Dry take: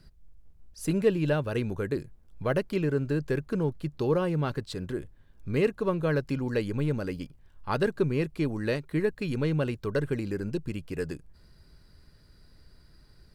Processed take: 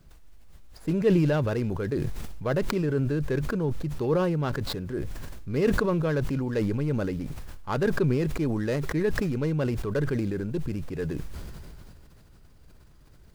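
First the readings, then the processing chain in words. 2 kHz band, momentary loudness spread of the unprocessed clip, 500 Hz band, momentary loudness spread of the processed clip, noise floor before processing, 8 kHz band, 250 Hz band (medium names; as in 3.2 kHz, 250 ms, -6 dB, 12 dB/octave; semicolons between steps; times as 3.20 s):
+1.5 dB, 9 LU, +1.0 dB, 11 LU, -58 dBFS, no reading, +2.5 dB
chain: median filter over 15 samples; added noise pink -69 dBFS; decay stretcher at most 21 dB/s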